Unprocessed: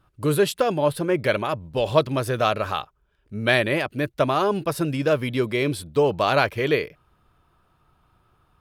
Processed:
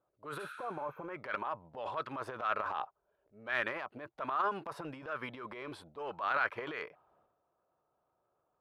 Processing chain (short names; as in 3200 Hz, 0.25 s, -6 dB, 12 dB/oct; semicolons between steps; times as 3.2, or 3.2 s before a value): auto-wah 580–1400 Hz, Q 3, up, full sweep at -16 dBFS; transient shaper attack -7 dB, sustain +10 dB; spectral repair 0.42–1, 1200–12000 Hz both; gain -5 dB